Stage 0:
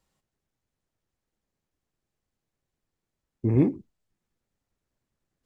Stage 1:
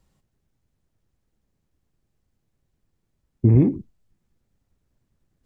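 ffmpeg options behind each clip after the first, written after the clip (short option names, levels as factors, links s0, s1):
-af "lowshelf=f=280:g=11.5,acompressor=threshold=0.2:ratio=6,volume=1.41"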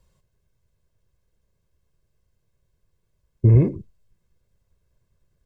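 -af "aecho=1:1:1.9:0.65"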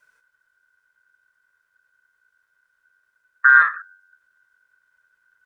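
-af "afreqshift=-46,aeval=exprs='val(0)*sin(2*PI*1500*n/s)':c=same,volume=1.58"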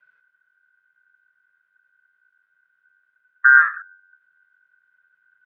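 -filter_complex "[0:a]highpass=f=130:w=0.5412,highpass=f=130:w=1.3066,equalizer=f=150:t=q:w=4:g=3,equalizer=f=310:t=q:w=4:g=-10,equalizer=f=480:t=q:w=4:g=-6,equalizer=f=960:t=q:w=4:g=-7,equalizer=f=1500:t=q:w=4:g=5,lowpass=f=3300:w=0.5412,lowpass=f=3300:w=1.3066,acrossover=split=2600[s0][s1];[s1]acompressor=threshold=0.0158:ratio=4:attack=1:release=60[s2];[s0][s2]amix=inputs=2:normalize=0,volume=0.75"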